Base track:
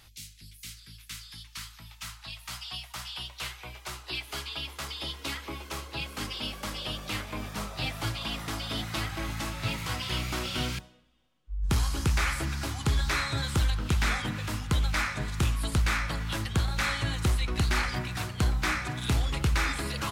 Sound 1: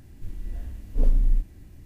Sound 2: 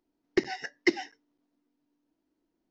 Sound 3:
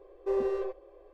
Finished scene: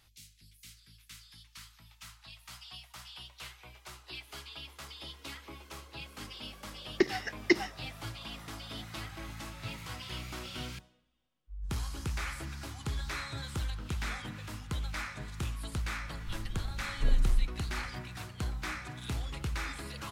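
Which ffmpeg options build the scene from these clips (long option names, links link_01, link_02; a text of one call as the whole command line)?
ffmpeg -i bed.wav -i cue0.wav -i cue1.wav -filter_complex "[0:a]volume=-9.5dB[link_01];[2:a]atrim=end=2.7,asetpts=PTS-STARTPTS,volume=-0.5dB,afade=type=in:duration=0.004:curve=hsin,afade=type=out:start_time=2.696:duration=0.004:curve=hsin,adelay=6630[link_02];[1:a]atrim=end=1.85,asetpts=PTS-STARTPTS,volume=-6.5dB,afade=type=in:duration=0.004:curve=hsin,afade=type=out:start_time=1.846:duration=0.004:curve=hsin,adelay=16050[link_03];[link_01][link_02][link_03]amix=inputs=3:normalize=0" out.wav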